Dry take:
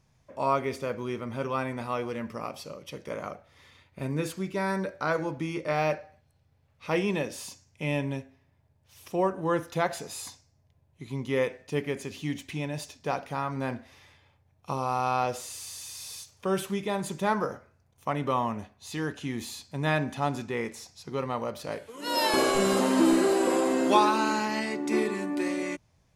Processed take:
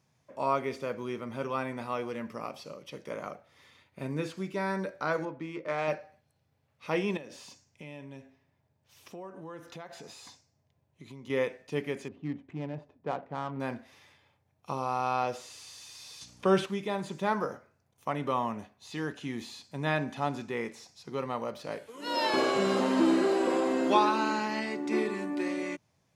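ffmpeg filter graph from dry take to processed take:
ffmpeg -i in.wav -filter_complex "[0:a]asettb=1/sr,asplit=3[link_01][link_02][link_03];[link_01]atrim=end=5.254[link_04];[link_02]atrim=start=5.25:end=5.88,asetpts=PTS-STARTPTS,afade=type=in:duration=0.004:curve=qsin,afade=type=out:start_time=0.626:duration=0.004:curve=qsin,lowshelf=frequency=250:gain=-8,bandreject=frequency=800:width=9.8,adynamicsmooth=sensitivity=3.5:basefreq=2000[link_05];[link_03]atrim=start=5.876[link_06];[link_04][link_05]acrossfade=duration=0.004:curve1=hsin:curve2=qsin[link_07];[link_07][link_06]acrossfade=duration=0.004:curve1=qsin:curve2=hsin,asettb=1/sr,asplit=3[link_08][link_09][link_10];[link_08]atrim=end=7.174[link_11];[link_09]atrim=start=7.17:end=11.3,asetpts=PTS-STARTPTS,afade=type=in:duration=0.004:curve=qsin,afade=type=out:start_time=4.126:duration=0.004:curve=qsin,equalizer=frequency=11000:width_type=o:width=0.48:gain=-6,acompressor=threshold=-39dB:ratio=5:attack=3.2:release=140:knee=1:detection=peak[link_12];[link_10]atrim=start=11.296[link_13];[link_11][link_12]acrossfade=duration=0.004:curve1=hsin:curve2=qsin[link_14];[link_14][link_13]acrossfade=duration=0.004:curve1=qsin:curve2=hsin,asettb=1/sr,asplit=3[link_15][link_16][link_17];[link_15]atrim=end=12.084[link_18];[link_16]atrim=start=12.08:end=13.6,asetpts=PTS-STARTPTS,afade=type=in:duration=0.004:curve=qsin,afade=type=out:start_time=1.516:duration=0.004:curve=qsin,highshelf=frequency=2300:gain=-11,adynamicsmooth=sensitivity=5:basefreq=970[link_19];[link_17]atrim=start=13.596[link_20];[link_18][link_19]acrossfade=duration=0.004:curve1=hsin:curve2=qsin[link_21];[link_21][link_20]acrossfade=duration=0.004:curve1=qsin:curve2=hsin,asettb=1/sr,asplit=3[link_22][link_23][link_24];[link_22]atrim=end=16.214[link_25];[link_23]atrim=start=16.21:end=16.66,asetpts=PTS-STARTPTS,afade=type=in:duration=0.004:curve=qsin,afade=type=out:start_time=0.446:duration=0.004:curve=qsin,lowpass=12000,aeval=exprs='val(0)+0.00158*(sin(2*PI*60*n/s)+sin(2*PI*2*60*n/s)/2+sin(2*PI*3*60*n/s)/3+sin(2*PI*4*60*n/s)/4+sin(2*PI*5*60*n/s)/5)':channel_layout=same,acontrast=61[link_26];[link_24]atrim=start=16.656[link_27];[link_25][link_26]acrossfade=duration=0.004:curve1=hsin:curve2=qsin[link_28];[link_28][link_27]acrossfade=duration=0.004:curve1=qsin:curve2=hsin,highpass=130,acrossover=split=5900[link_29][link_30];[link_30]acompressor=threshold=-57dB:ratio=4:attack=1:release=60[link_31];[link_29][link_31]amix=inputs=2:normalize=0,volume=-2.5dB" out.wav

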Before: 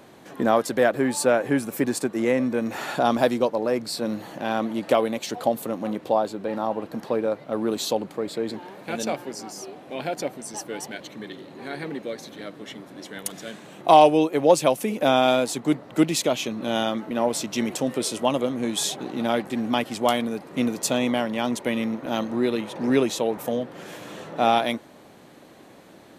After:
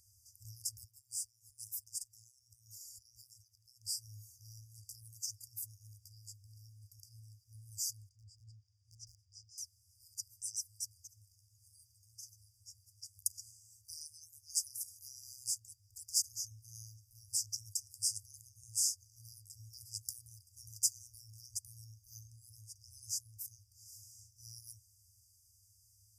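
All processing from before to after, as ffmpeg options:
ffmpeg -i in.wav -filter_complex "[0:a]asettb=1/sr,asplit=3[link_01][link_02][link_03];[link_01]atrim=end=0.844[link_04];[link_02]atrim=start=0.84:end=3.86,asetpts=PTS-STARTPTS,afade=type=in:duration=0.004:curve=qsin,afade=type=out:start_time=3.016:duration=0.004:curve=qsin,lowshelf=frequency=120:gain=-11.5,acompressor=threshold=-30dB:ratio=6:attack=3.2:release=140:knee=1:detection=peak[link_05];[link_03]atrim=start=3.856[link_06];[link_04][link_05]acrossfade=duration=0.004:curve1=hsin:curve2=qsin[link_07];[link_07][link_06]acrossfade=duration=0.004:curve1=qsin:curve2=hsin,asettb=1/sr,asplit=3[link_08][link_09][link_10];[link_08]atrim=end=8.094[link_11];[link_09]atrim=start=8.09:end=9.58,asetpts=PTS-STARTPTS,afade=type=in:duration=0.004:curve=qsin,afade=type=out:start_time=1.486:duration=0.004:curve=qsin,lowpass=2800,asoftclip=type=hard:threshold=-18.5dB[link_12];[link_10]atrim=start=9.576[link_13];[link_11][link_12]acrossfade=duration=0.004:curve1=hsin:curve2=qsin[link_14];[link_14][link_13]acrossfade=duration=0.004:curve1=qsin:curve2=hsin,highpass=56,afftfilt=real='re*(1-between(b*sr/4096,110,4700))':imag='im*(1-between(b*sr/4096,110,4700))':win_size=4096:overlap=0.75,volume=-3.5dB" out.wav

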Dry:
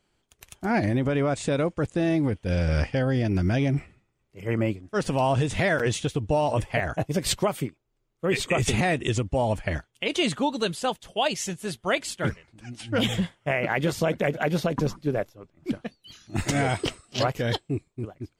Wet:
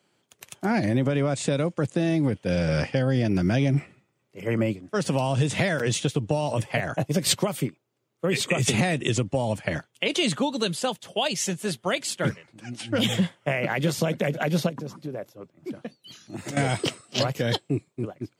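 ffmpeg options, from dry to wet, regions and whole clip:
ffmpeg -i in.wav -filter_complex "[0:a]asettb=1/sr,asplit=3[link_01][link_02][link_03];[link_01]atrim=end=14.694[link_04];[link_02]atrim=start=14.69:end=16.57,asetpts=PTS-STARTPTS,afade=type=in:duration=0.004:curve=qsin,afade=type=out:start_time=1.876:duration=0.004:curve=qsin,equalizer=frequency=2100:width=0.37:gain=-3,acompressor=threshold=-33dB:ratio=10:attack=3.2:release=140:knee=1:detection=peak[link_05];[link_03]atrim=start=16.566[link_06];[link_04][link_05]acrossfade=duration=0.004:curve1=hsin:curve2=qsin[link_07];[link_07][link_06]acrossfade=duration=0.004:curve1=qsin:curve2=hsin,highpass=frequency=120:width=0.5412,highpass=frequency=120:width=1.3066,equalizer=frequency=550:width=6.9:gain=3.5,acrossover=split=210|3000[link_08][link_09][link_10];[link_09]acompressor=threshold=-28dB:ratio=6[link_11];[link_08][link_11][link_10]amix=inputs=3:normalize=0,volume=4dB" out.wav

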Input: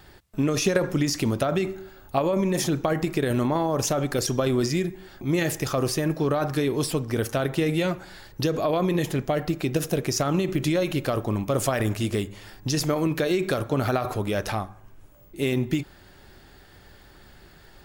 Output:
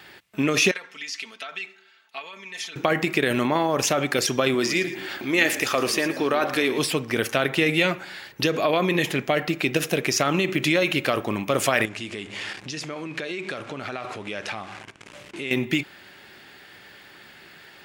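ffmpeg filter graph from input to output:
ffmpeg -i in.wav -filter_complex "[0:a]asettb=1/sr,asplit=3[link_01][link_02][link_03];[link_01]atrim=end=0.714[link_04];[link_02]atrim=start=0.71:end=2.76,asetpts=PTS-STARTPTS,afade=type=in:duration=0.004:curve=qsin,afade=type=out:start_time=2.046:duration=0.004:curve=qsin,lowpass=3700,aderivative,aecho=1:1:4.5:0.67,atrim=end_sample=90405[link_05];[link_03]atrim=start=2.756[link_06];[link_04][link_05]acrossfade=duration=0.004:curve1=hsin:curve2=qsin[link_07];[link_07][link_06]acrossfade=duration=0.004:curve1=qsin:curve2=hsin,asettb=1/sr,asplit=3[link_08][link_09][link_10];[link_08]atrim=end=4.544[link_11];[link_09]atrim=start=4.54:end=6.79,asetpts=PTS-STARTPTS,afade=type=in:duration=0.004:curve=qsin,afade=type=out:start_time=2.246:duration=0.004:curve=qsin,equalizer=frequency=150:width_type=o:width=0.62:gain=-11,acompressor=mode=upward:threshold=-27dB:ratio=2.5:attack=3.2:release=140:knee=2.83:detection=peak,asplit=4[link_12][link_13][link_14][link_15];[link_13]adelay=112,afreqshift=-42,volume=-12.5dB[link_16];[link_14]adelay=224,afreqshift=-84,volume=-22.4dB[link_17];[link_15]adelay=336,afreqshift=-126,volume=-32.3dB[link_18];[link_12][link_16][link_17][link_18]amix=inputs=4:normalize=0,atrim=end_sample=99225[link_19];[link_10]atrim=start=6.786[link_20];[link_11][link_19]acrossfade=duration=0.004:curve1=hsin:curve2=qsin[link_21];[link_21][link_20]acrossfade=duration=0.004:curve1=qsin:curve2=hsin,asettb=1/sr,asplit=3[link_22][link_23][link_24];[link_22]atrim=end=11.854[link_25];[link_23]atrim=start=11.85:end=15.51,asetpts=PTS-STARTPTS,afade=type=in:duration=0.004:curve=qsin,afade=type=out:start_time=3.656:duration=0.004:curve=qsin,aeval=exprs='val(0)+0.5*0.0126*sgn(val(0))':channel_layout=same,lowpass=frequency=9000:width=0.5412,lowpass=frequency=9000:width=1.3066,acompressor=threshold=-35dB:ratio=3:attack=3.2:release=140:knee=1:detection=peak[link_26];[link_24]atrim=start=15.506[link_27];[link_25][link_26]acrossfade=duration=0.004:curve1=hsin:curve2=qsin[link_28];[link_28][link_27]acrossfade=duration=0.004:curve1=qsin:curve2=hsin,highpass=170,equalizer=frequency=2400:width=0.98:gain=11.5,volume=1dB" out.wav

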